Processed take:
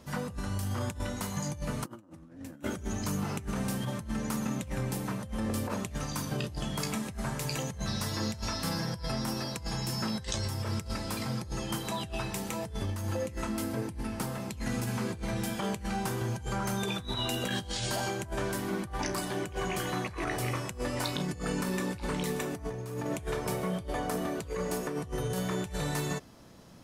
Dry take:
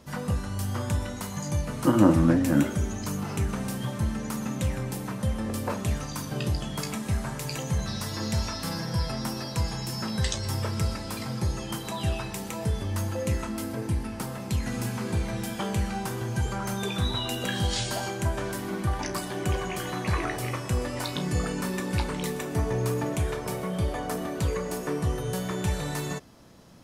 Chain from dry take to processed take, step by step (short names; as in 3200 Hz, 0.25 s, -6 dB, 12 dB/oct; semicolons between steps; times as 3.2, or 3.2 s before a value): negative-ratio compressor -30 dBFS, ratio -0.5; gain -3 dB